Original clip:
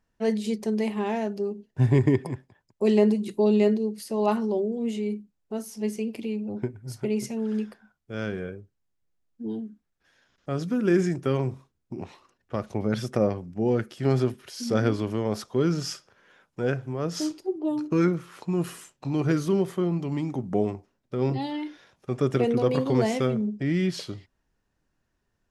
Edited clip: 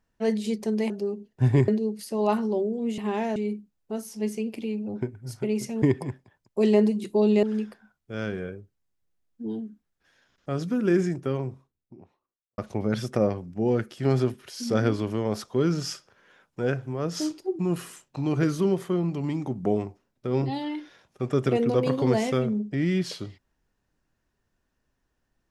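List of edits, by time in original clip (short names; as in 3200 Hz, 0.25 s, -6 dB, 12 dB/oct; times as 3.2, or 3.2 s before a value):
0.9–1.28 move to 4.97
2.06–3.67 move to 7.43
10.64–12.58 studio fade out
17.59–18.47 cut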